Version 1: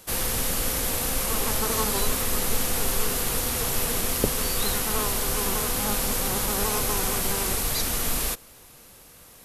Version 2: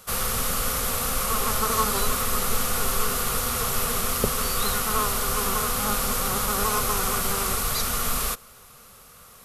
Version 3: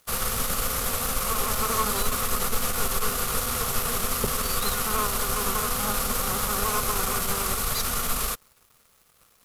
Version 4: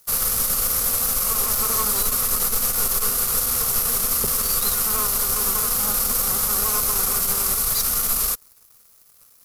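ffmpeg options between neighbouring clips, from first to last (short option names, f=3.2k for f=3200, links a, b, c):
-af "superequalizer=6b=0.316:10b=2.51"
-af "aeval=exprs='(tanh(7.94*val(0)+0.4)-tanh(0.4))/7.94':c=same,aeval=exprs='sgn(val(0))*max(abs(val(0))-0.00398,0)':c=same,volume=1.5dB"
-af "aexciter=amount=2.7:drive=5:freq=4.5k,volume=-2dB"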